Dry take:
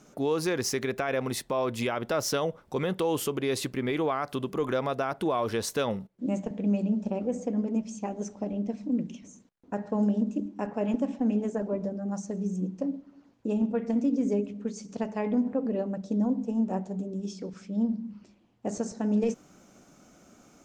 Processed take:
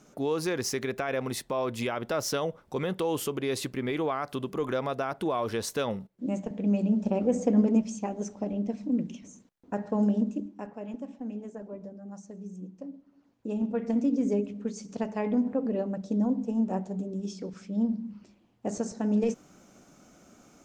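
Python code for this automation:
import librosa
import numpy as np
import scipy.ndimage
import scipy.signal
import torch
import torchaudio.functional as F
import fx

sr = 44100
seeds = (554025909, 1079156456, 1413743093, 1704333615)

y = fx.gain(x, sr, db=fx.line((6.44, -1.5), (7.63, 7.0), (8.08, 0.5), (10.22, 0.5), (10.82, -10.5), (12.91, -10.5), (13.87, 0.0)))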